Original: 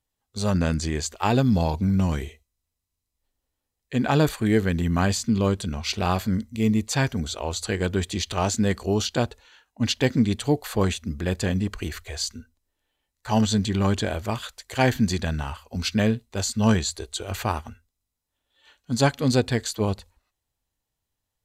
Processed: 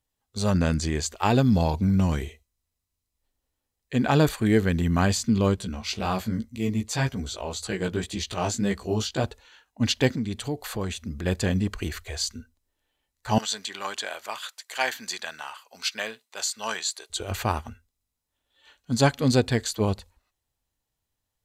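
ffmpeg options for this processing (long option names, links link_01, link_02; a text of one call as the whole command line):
ffmpeg -i in.wav -filter_complex "[0:a]asettb=1/sr,asplit=3[link_01][link_02][link_03];[link_01]atrim=end=5.564[link_04];[link_02]atrim=start=5.56:end=9.24,asetpts=PTS-STARTPTS,afade=type=in:duration=0.004:curve=qsin,afade=type=out:start_time=3.676:duration=0.004:curve=qsin,flanger=delay=15:depth=2.9:speed=1.9[link_05];[link_03]atrim=start=9.236[link_06];[link_04][link_05]acrossfade=duration=0.004:curve1=hsin:curve2=qsin[link_07];[link_07][link_06]acrossfade=duration=0.004:curve1=qsin:curve2=hsin,asettb=1/sr,asplit=3[link_08][link_09][link_10];[link_08]atrim=end=10.134[link_11];[link_09]atrim=start=10.13:end=11.25,asetpts=PTS-STARTPTS,afade=type=in:duration=0.004:curve=qsin,afade=type=out:start_time=1.116:duration=0.004:curve=qsin,acompressor=threshold=-31dB:ratio=2:attack=3.2:release=140:knee=1:detection=peak[link_12];[link_10]atrim=start=11.246[link_13];[link_11][link_12]acrossfade=duration=0.004:curve1=hsin:curve2=qsin[link_14];[link_14][link_13]acrossfade=duration=0.004:curve1=qsin:curve2=hsin,asettb=1/sr,asplit=3[link_15][link_16][link_17];[link_15]atrim=end=13.384[link_18];[link_16]atrim=start=13.38:end=17.1,asetpts=PTS-STARTPTS,afade=type=in:duration=0.004:curve=qsin,afade=type=out:start_time=3.716:duration=0.004:curve=qsin,highpass=890[link_19];[link_17]atrim=start=17.096[link_20];[link_18][link_19]acrossfade=duration=0.004:curve1=hsin:curve2=qsin[link_21];[link_21][link_20]acrossfade=duration=0.004:curve1=qsin:curve2=hsin" out.wav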